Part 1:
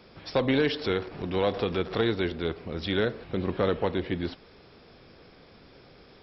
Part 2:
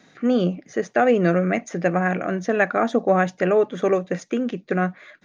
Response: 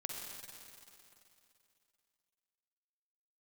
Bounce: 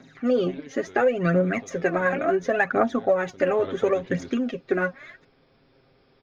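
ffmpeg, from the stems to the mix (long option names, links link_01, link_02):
-filter_complex "[0:a]volume=-8.5dB,afade=type=in:start_time=3.43:duration=0.24:silence=0.266073[link_01];[1:a]aphaser=in_gain=1:out_gain=1:delay=3.9:decay=0.67:speed=0.71:type=triangular,volume=-2dB[link_02];[link_01][link_02]amix=inputs=2:normalize=0,highshelf=frequency=4200:gain=-6.5,aecho=1:1:7.5:0.53,acompressor=threshold=-17dB:ratio=6"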